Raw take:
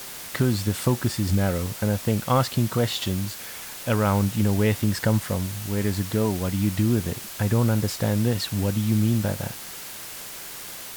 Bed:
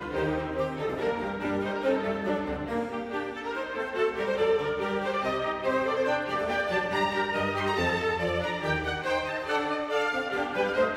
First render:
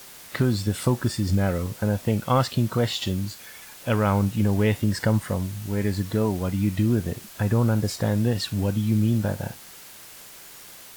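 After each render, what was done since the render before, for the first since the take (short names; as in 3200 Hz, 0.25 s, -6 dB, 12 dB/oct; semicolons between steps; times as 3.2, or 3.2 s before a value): noise print and reduce 7 dB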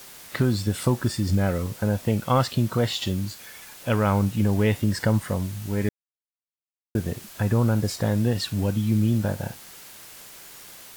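5.89–6.95 mute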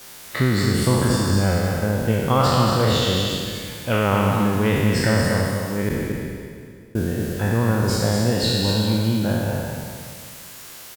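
spectral trails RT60 2.16 s; on a send: echo 0.231 s -5.5 dB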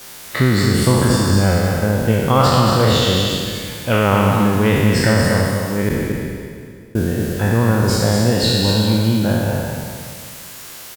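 gain +4.5 dB; limiter -2 dBFS, peak gain reduction 1.5 dB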